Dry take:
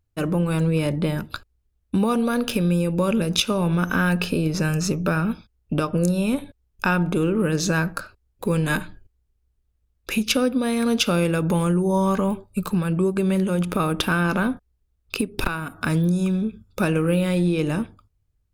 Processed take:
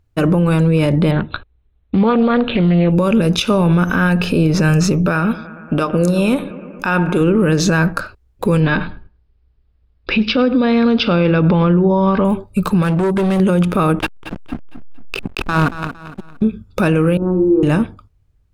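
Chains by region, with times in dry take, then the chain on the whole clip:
1.11–2.92 Chebyshev low-pass 4100 Hz, order 8 + Doppler distortion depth 0.27 ms
5.1–7.21 low shelf 220 Hz -8.5 dB + analogue delay 0.115 s, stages 2048, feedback 78%, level -18.5 dB
8.6–12.25 steep low-pass 5200 Hz 72 dB/oct + darkening echo 0.103 s, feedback 17%, low-pass 2400 Hz, level -18.5 dB
12.82–13.4 low shelf 190 Hz -5.5 dB + hard clip -25 dBFS + fast leveller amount 50%
13.99–16.42 negative-ratio compressor -29 dBFS, ratio -0.5 + backlash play -23 dBFS + feedback echo 0.229 s, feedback 35%, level -12 dB
17.17–17.63 Bessel low-pass 740 Hz, order 4 + fixed phaser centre 580 Hz, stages 6 + flutter echo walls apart 8.4 m, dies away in 0.53 s
whole clip: high shelf 5400 Hz -10.5 dB; maximiser +17 dB; gain -5.5 dB

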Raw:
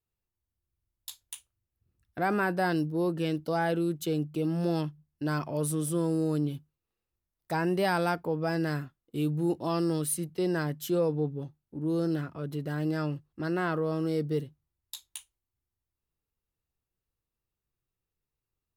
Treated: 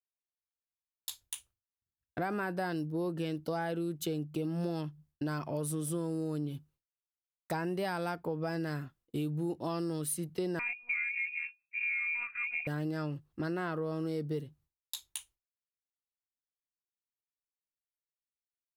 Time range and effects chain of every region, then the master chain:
10.59–12.67 air absorption 320 m + inverted band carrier 2600 Hz + monotone LPC vocoder at 8 kHz 240 Hz
whole clip: expander -57 dBFS; compressor 5:1, threshold -34 dBFS; gain +2 dB

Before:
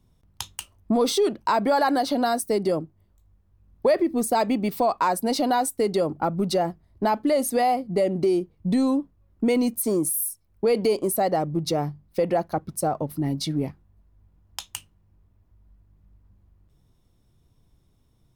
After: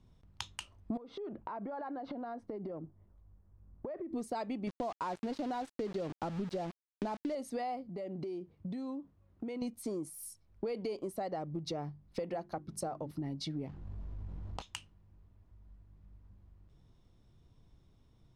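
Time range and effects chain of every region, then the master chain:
0.97–4.13 LPF 1400 Hz + compressor 16:1, threshold -34 dBFS
4.67–7.35 tilt -2 dB/oct + sample gate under -28 dBFS
7.89–9.62 HPF 77 Hz + high shelf 5800 Hz -5 dB + compressor 2.5:1, threshold -38 dBFS
12.19–13.11 high shelf 6300 Hz +5.5 dB + notches 50/100/150/200/250/300/350/400 Hz
13.67–14.62 median filter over 25 samples + fast leveller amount 70%
whole clip: LPF 5600 Hz 12 dB/oct; compressor 4:1, threshold -37 dBFS; gain -1 dB

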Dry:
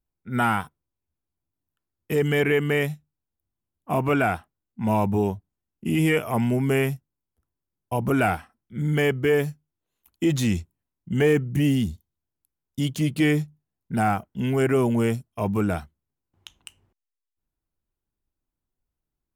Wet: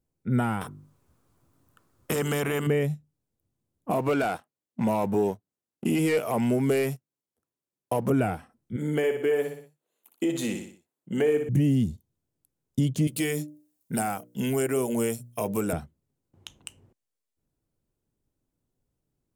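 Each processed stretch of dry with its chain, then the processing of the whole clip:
0.61–2.67 bell 1200 Hz +11.5 dB 0.8 oct + notches 50/100/150/200/250/300/350/400 Hz + spectral compressor 2:1
3.91–8.1 HPF 650 Hz 6 dB/oct + sample leveller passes 2
8.76–11.49 HPF 430 Hz + bell 5500 Hz -8 dB 0.34 oct + feedback echo 60 ms, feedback 38%, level -7.5 dB
13.07–15.73 RIAA curve recording + notches 60/120/180/240/300/360/420/480/540/600 Hz
whole clip: compressor 2.5:1, threshold -35 dBFS; graphic EQ 125/250/500/8000 Hz +10/+6/+9/+5 dB

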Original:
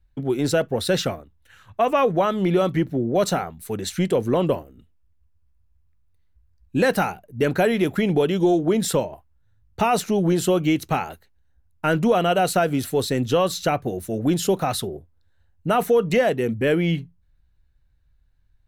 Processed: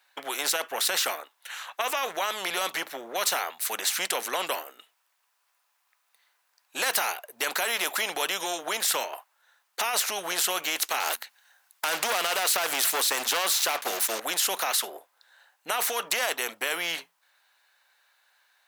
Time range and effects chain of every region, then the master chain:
11–14.2 sample leveller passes 2 + notches 60/120/180/240 Hz + mismatched tape noise reduction encoder only
whole clip: HPF 730 Hz 24 dB/oct; maximiser +19 dB; spectral compressor 2:1; gain -9 dB

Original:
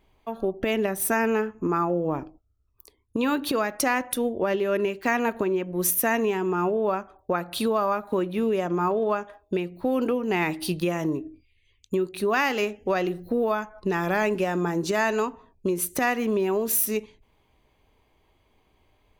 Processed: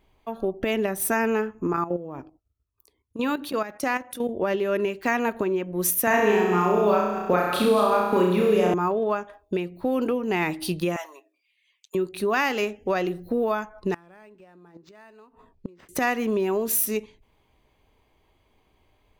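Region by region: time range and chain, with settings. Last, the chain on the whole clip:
1.73–4.29 HPF 46 Hz + level quantiser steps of 12 dB
6.07–8.74 reverse delay 0.124 s, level -9 dB + flutter echo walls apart 5.7 m, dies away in 0.8 s + three-band squash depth 70%
10.96–11.95 HPF 740 Hz 24 dB/oct + comb 7.4 ms, depth 62%
13.94–15.89 flipped gate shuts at -19 dBFS, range -26 dB + decimation joined by straight lines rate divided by 4×
whole clip: dry

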